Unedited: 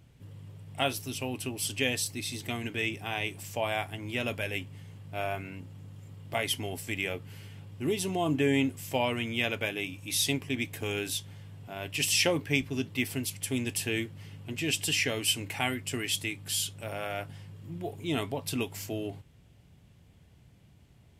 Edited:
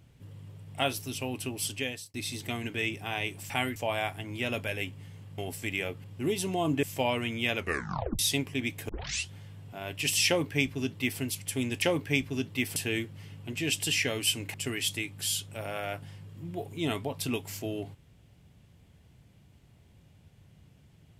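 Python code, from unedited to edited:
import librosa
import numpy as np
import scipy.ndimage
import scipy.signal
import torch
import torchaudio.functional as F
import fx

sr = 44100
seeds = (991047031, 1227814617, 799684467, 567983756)

y = fx.edit(x, sr, fx.fade_out_span(start_s=1.63, length_s=0.51),
    fx.cut(start_s=5.12, length_s=1.51),
    fx.cut(start_s=7.29, length_s=0.36),
    fx.cut(start_s=8.44, length_s=0.34),
    fx.tape_stop(start_s=9.52, length_s=0.62),
    fx.tape_start(start_s=10.84, length_s=0.41),
    fx.duplicate(start_s=12.22, length_s=0.94, to_s=13.77),
    fx.move(start_s=15.55, length_s=0.26, to_s=3.5), tone=tone)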